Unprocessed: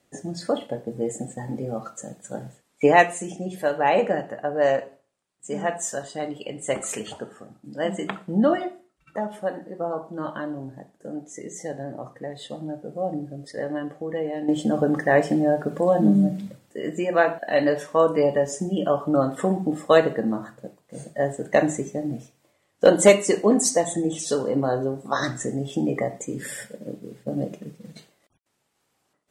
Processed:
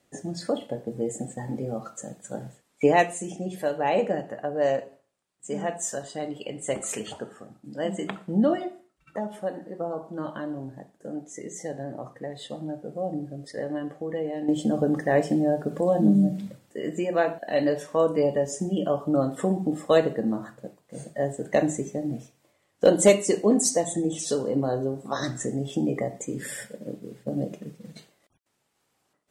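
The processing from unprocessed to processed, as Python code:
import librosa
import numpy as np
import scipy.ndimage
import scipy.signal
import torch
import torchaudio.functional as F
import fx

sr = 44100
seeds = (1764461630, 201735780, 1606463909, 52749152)

y = fx.dynamic_eq(x, sr, hz=1400.0, q=0.71, threshold_db=-36.0, ratio=4.0, max_db=-7)
y = F.gain(torch.from_numpy(y), -1.0).numpy()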